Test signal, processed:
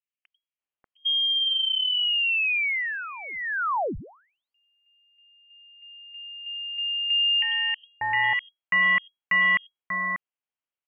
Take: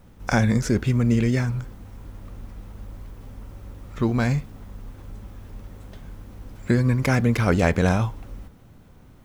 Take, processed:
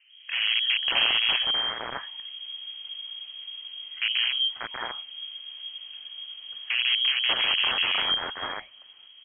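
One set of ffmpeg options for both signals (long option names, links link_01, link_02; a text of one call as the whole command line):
ffmpeg -i in.wav -filter_complex "[0:a]aeval=exprs='(mod(5.31*val(0)+1,2)-1)/5.31':channel_layout=same,acrossover=split=220|1500[link_01][link_02][link_03];[link_01]adelay=90[link_04];[link_03]adelay=590[link_05];[link_04][link_02][link_05]amix=inputs=3:normalize=0,lowpass=frequency=2800:width_type=q:width=0.5098,lowpass=frequency=2800:width_type=q:width=0.6013,lowpass=frequency=2800:width_type=q:width=0.9,lowpass=frequency=2800:width_type=q:width=2.563,afreqshift=-3300,volume=-1.5dB" out.wav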